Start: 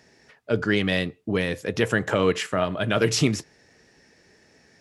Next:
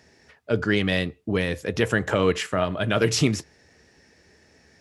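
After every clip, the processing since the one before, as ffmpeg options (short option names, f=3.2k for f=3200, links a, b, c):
-af "equalizer=f=73:t=o:w=0.38:g=12"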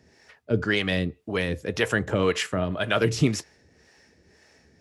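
-filter_complex "[0:a]acrossover=split=470[a][b];[a]aeval=exprs='val(0)*(1-0.7/2+0.7/2*cos(2*PI*1.9*n/s))':c=same[c];[b]aeval=exprs='val(0)*(1-0.7/2-0.7/2*cos(2*PI*1.9*n/s))':c=same[d];[c][d]amix=inputs=2:normalize=0,volume=2dB"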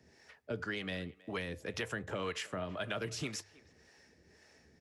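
-filter_complex "[0:a]bandreject=f=50:t=h:w=6,bandreject=f=100:t=h:w=6,acrossover=split=210|630[a][b][c];[a]acompressor=threshold=-41dB:ratio=4[d];[b]acompressor=threshold=-39dB:ratio=4[e];[c]acompressor=threshold=-33dB:ratio=4[f];[d][e][f]amix=inputs=3:normalize=0,asplit=2[g][h];[h]adelay=320,highpass=300,lowpass=3.4k,asoftclip=type=hard:threshold=-24.5dB,volume=-21dB[i];[g][i]amix=inputs=2:normalize=0,volume=-5.5dB"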